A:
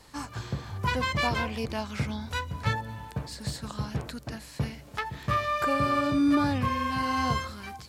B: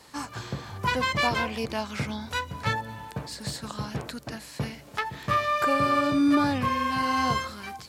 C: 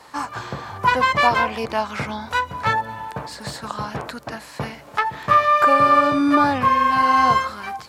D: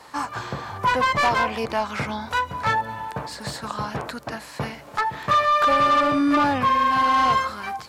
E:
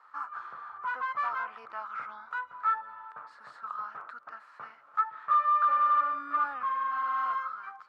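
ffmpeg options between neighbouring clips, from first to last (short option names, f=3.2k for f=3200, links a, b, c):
-af "highpass=f=180:p=1,volume=3dB"
-af "equalizer=f=1k:t=o:w=2.3:g=11"
-af "asoftclip=type=tanh:threshold=-13.5dB"
-af "bandpass=f=1.3k:t=q:w=8.8:csg=0"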